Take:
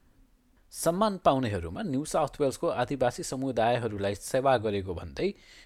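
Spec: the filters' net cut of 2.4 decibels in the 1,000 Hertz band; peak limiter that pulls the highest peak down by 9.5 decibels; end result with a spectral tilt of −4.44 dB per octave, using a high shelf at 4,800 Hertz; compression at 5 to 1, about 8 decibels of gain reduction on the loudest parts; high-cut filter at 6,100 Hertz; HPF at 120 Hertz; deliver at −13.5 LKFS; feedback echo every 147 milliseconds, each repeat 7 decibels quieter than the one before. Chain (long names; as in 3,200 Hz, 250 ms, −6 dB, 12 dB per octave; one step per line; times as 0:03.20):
high-pass filter 120 Hz
low-pass filter 6,100 Hz
parametric band 1,000 Hz −4 dB
high-shelf EQ 4,800 Hz +7.5 dB
downward compressor 5 to 1, threshold −28 dBFS
brickwall limiter −25 dBFS
repeating echo 147 ms, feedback 45%, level −7 dB
level +22 dB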